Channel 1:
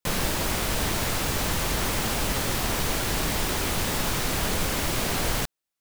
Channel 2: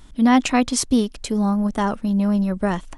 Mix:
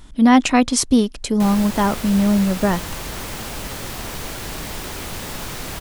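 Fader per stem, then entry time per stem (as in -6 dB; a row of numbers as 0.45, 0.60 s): -3.5, +3.0 dB; 1.35, 0.00 s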